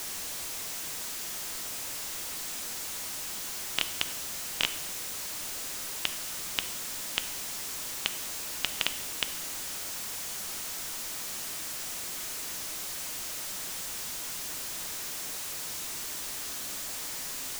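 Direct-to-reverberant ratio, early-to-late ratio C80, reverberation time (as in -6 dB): 10.0 dB, 15.5 dB, 1.0 s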